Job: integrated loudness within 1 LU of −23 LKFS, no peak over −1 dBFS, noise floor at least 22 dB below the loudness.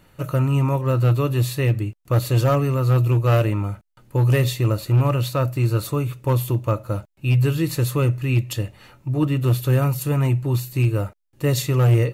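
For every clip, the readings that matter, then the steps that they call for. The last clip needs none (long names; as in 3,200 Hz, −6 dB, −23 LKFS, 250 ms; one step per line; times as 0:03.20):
share of clipped samples 1.2%; peaks flattened at −11.5 dBFS; integrated loudness −21.0 LKFS; sample peak −11.5 dBFS; target loudness −23.0 LKFS
→ clipped peaks rebuilt −11.5 dBFS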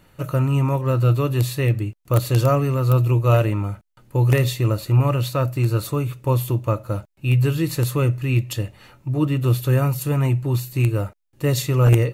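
share of clipped samples 0.0%; integrated loudness −20.5 LKFS; sample peak −2.5 dBFS; target loudness −23.0 LKFS
→ level −2.5 dB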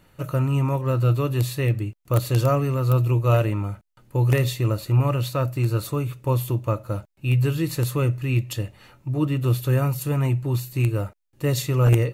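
integrated loudness −23.0 LKFS; sample peak −5.0 dBFS; background noise floor −58 dBFS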